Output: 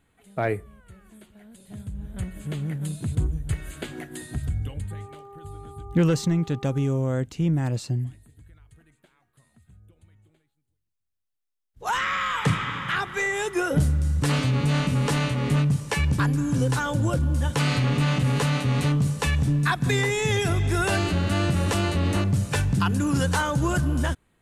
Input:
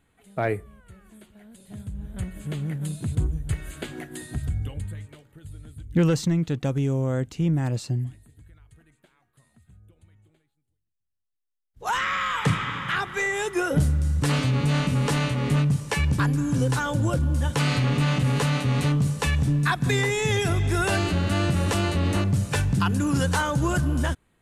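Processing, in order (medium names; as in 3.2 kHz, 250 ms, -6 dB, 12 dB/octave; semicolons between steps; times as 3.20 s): 4.90–6.97 s: mains buzz 400 Hz, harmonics 3, -45 dBFS -3 dB/octave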